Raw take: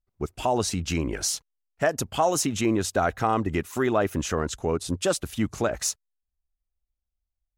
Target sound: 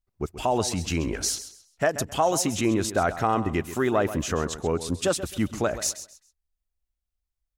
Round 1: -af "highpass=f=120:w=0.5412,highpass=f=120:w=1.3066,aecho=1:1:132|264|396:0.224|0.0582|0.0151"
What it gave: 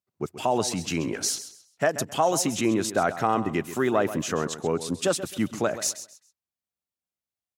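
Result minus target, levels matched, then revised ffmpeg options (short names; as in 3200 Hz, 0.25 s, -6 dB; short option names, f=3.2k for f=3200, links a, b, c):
125 Hz band -3.0 dB
-af "aecho=1:1:132|264|396:0.224|0.0582|0.0151"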